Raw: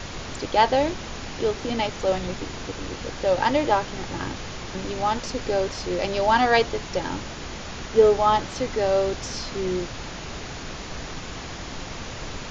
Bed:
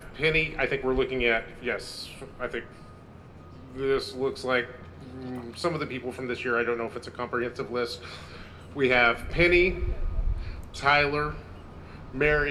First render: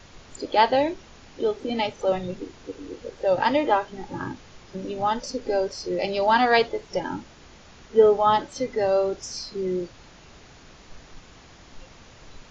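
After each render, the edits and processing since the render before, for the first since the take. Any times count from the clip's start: noise print and reduce 14 dB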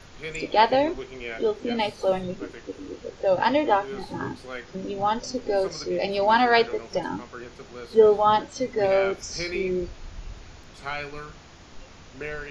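add bed -11 dB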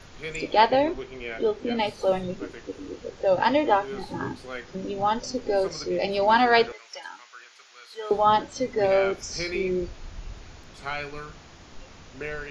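0.67–1.87 air absorption 55 m; 6.72–8.11 HPF 1500 Hz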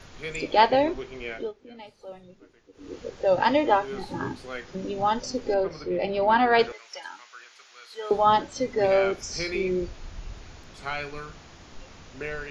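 1.29–2.97 dip -18.5 dB, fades 0.24 s; 5.54–6.59 air absorption 260 m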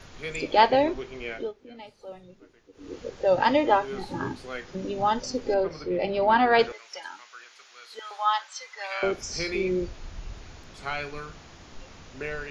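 7.99–9.03 HPF 1000 Hz 24 dB/oct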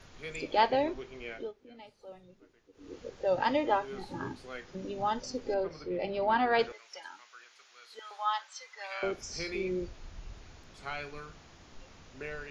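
gain -7 dB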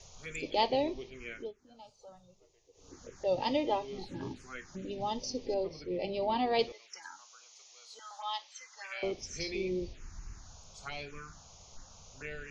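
envelope phaser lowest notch 220 Hz, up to 1500 Hz, full sweep at -34 dBFS; synth low-pass 6500 Hz, resonance Q 3.7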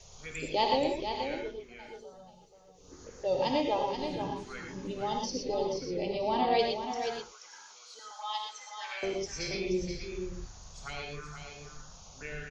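on a send: echo 0.48 s -7.5 dB; on the sum: non-linear reverb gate 0.14 s rising, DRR 2 dB

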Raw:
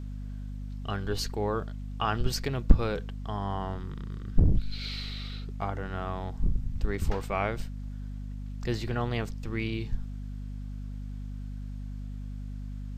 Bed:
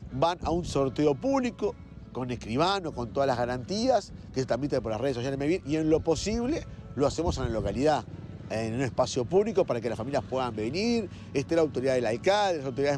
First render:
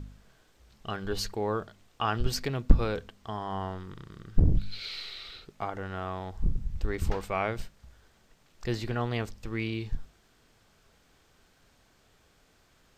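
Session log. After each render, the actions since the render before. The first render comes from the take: de-hum 50 Hz, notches 5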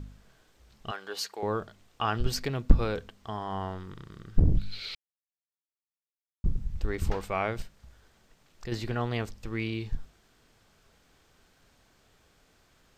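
0.91–1.43 HPF 570 Hz; 4.95–6.44 mute; 7.62–8.72 compressor 1.5:1, threshold -42 dBFS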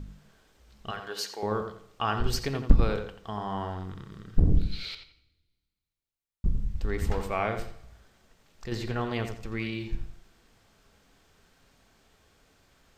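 darkening echo 86 ms, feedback 28%, low-pass 3300 Hz, level -7.5 dB; two-slope reverb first 0.64 s, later 1.8 s, from -21 dB, DRR 12 dB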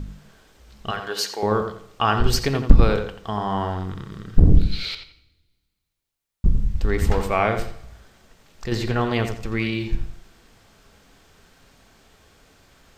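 gain +8.5 dB; limiter -1 dBFS, peak gain reduction 2.5 dB

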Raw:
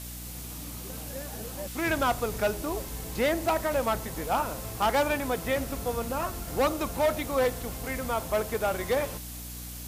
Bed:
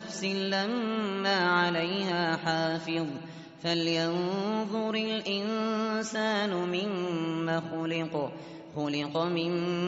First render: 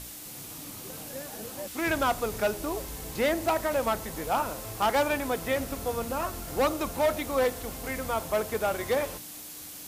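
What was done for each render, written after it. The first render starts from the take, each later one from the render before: notches 60/120/180/240 Hz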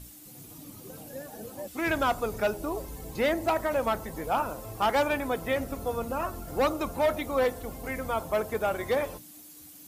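denoiser 11 dB, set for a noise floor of -43 dBFS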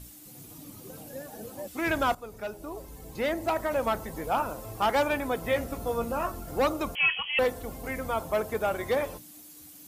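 2.15–3.88 fade in, from -13 dB; 5.42–6.32 doubler 17 ms -7 dB; 6.95–7.39 inverted band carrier 3200 Hz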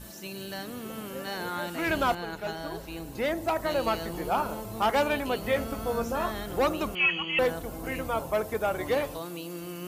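add bed -9 dB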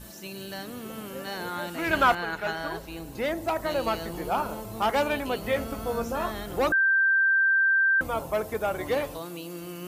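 1.93–2.79 bell 1600 Hz +9 dB 1.7 oct; 6.72–8.01 bleep 1570 Hz -18.5 dBFS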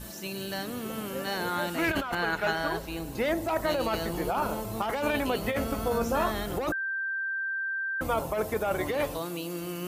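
negative-ratio compressor -28 dBFS, ratio -1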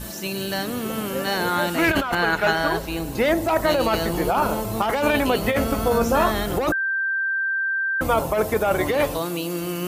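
gain +8 dB

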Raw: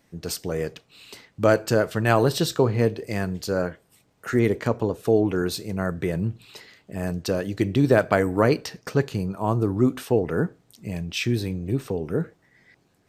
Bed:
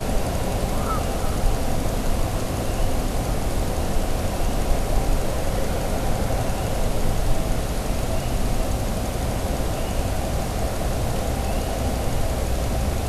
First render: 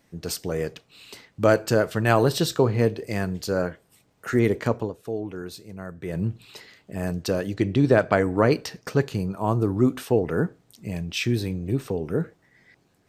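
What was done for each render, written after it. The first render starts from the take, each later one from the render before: 4.74–6.22 dip -10.5 dB, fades 0.20 s; 7.54–8.51 air absorption 51 m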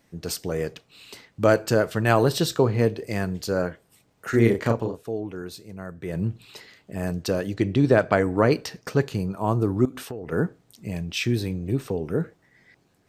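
4.3–5.03 doubler 35 ms -4 dB; 9.85–10.32 compressor 5:1, threshold -31 dBFS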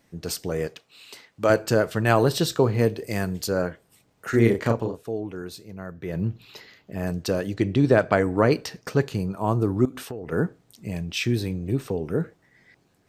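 0.67–1.5 low shelf 260 Hz -11.5 dB; 2.61–3.47 high shelf 11000 Hz -> 6200 Hz +8.5 dB; 5.64–7.07 bell 8500 Hz -15 dB 0.26 oct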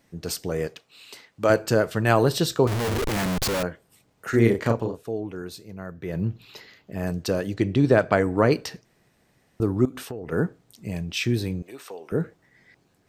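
2.67–3.63 Schmitt trigger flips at -36.5 dBFS; 8.85–9.6 room tone; 11.62–12.12 HPF 780 Hz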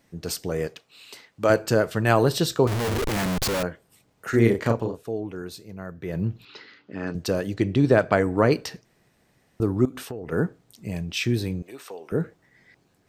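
6.45–7.15 speaker cabinet 150–5200 Hz, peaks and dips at 170 Hz -5 dB, 290 Hz +6 dB, 660 Hz -8 dB, 1400 Hz +8 dB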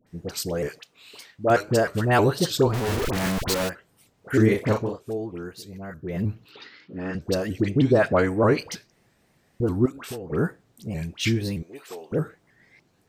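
dispersion highs, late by 68 ms, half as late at 1100 Hz; shaped vibrato saw up 3.2 Hz, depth 160 cents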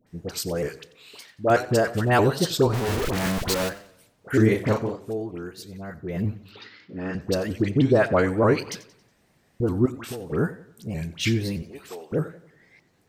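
warbling echo 92 ms, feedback 45%, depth 117 cents, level -17.5 dB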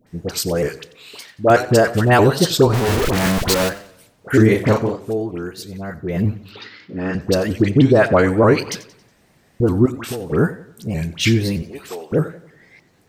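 gain +7.5 dB; limiter -3 dBFS, peak gain reduction 3 dB

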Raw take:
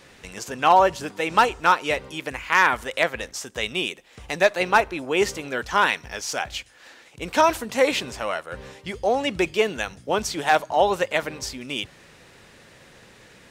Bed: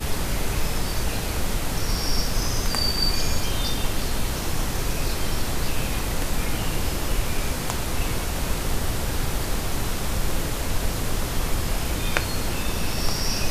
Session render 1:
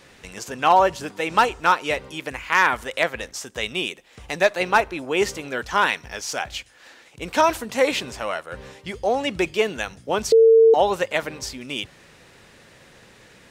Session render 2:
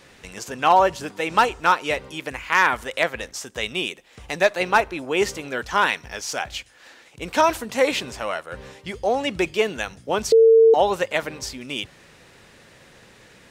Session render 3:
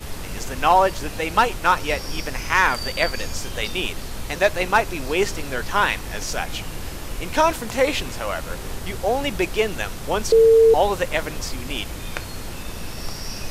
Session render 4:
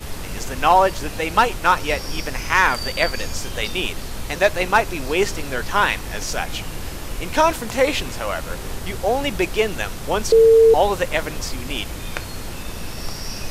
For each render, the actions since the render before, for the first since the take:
10.32–10.74 bleep 451 Hz -9 dBFS
nothing audible
add bed -6.5 dB
gain +1.5 dB

